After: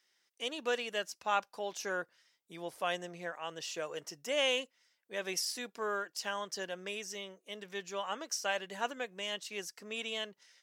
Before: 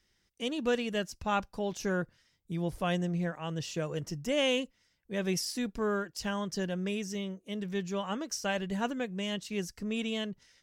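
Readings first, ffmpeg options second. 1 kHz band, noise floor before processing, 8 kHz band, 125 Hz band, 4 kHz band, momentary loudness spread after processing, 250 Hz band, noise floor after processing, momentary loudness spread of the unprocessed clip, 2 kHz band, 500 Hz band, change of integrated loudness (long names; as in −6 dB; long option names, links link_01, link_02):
−0.5 dB, −74 dBFS, 0.0 dB, −20.0 dB, 0.0 dB, 9 LU, −15.0 dB, −79 dBFS, 6 LU, 0.0 dB, −4.0 dB, −3.5 dB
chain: -af "highpass=560"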